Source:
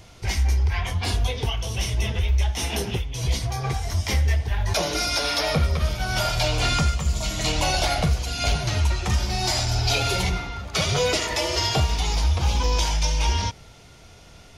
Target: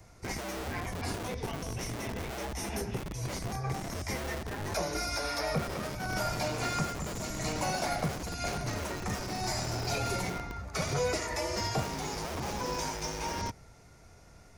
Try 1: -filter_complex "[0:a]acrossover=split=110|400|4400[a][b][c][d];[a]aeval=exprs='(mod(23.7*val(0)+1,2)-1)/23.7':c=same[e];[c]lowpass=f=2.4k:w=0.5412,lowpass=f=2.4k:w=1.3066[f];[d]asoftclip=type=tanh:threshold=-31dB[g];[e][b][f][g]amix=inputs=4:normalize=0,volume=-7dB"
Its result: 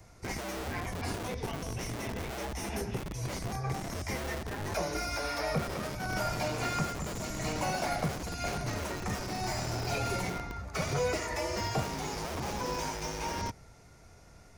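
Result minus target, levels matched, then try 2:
soft clip: distortion +13 dB
-filter_complex "[0:a]acrossover=split=110|400|4400[a][b][c][d];[a]aeval=exprs='(mod(23.7*val(0)+1,2)-1)/23.7':c=same[e];[c]lowpass=f=2.4k:w=0.5412,lowpass=f=2.4k:w=1.3066[f];[d]asoftclip=type=tanh:threshold=-20.5dB[g];[e][b][f][g]amix=inputs=4:normalize=0,volume=-7dB"

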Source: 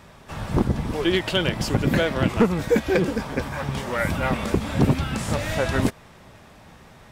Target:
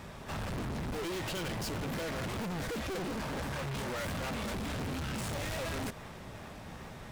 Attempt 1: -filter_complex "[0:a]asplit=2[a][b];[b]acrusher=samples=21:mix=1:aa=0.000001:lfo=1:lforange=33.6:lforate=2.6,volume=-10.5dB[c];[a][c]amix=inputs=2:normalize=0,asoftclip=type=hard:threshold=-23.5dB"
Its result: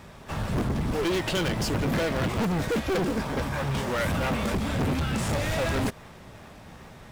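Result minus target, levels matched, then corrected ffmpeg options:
hard clip: distortion -4 dB
-filter_complex "[0:a]asplit=2[a][b];[b]acrusher=samples=21:mix=1:aa=0.000001:lfo=1:lforange=33.6:lforate=2.6,volume=-10.5dB[c];[a][c]amix=inputs=2:normalize=0,asoftclip=type=hard:threshold=-35.5dB"

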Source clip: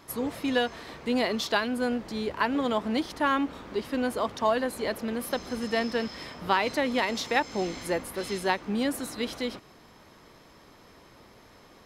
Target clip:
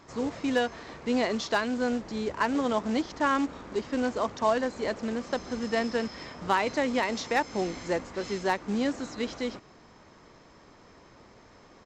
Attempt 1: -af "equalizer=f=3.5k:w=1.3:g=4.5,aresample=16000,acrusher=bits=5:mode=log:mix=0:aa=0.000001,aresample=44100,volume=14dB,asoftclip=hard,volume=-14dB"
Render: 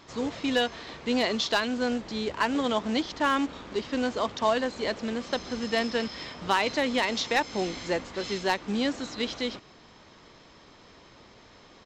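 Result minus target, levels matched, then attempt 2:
4000 Hz band +6.0 dB
-af "equalizer=f=3.5k:w=1.3:g=-5,aresample=16000,acrusher=bits=5:mode=log:mix=0:aa=0.000001,aresample=44100,volume=14dB,asoftclip=hard,volume=-14dB"

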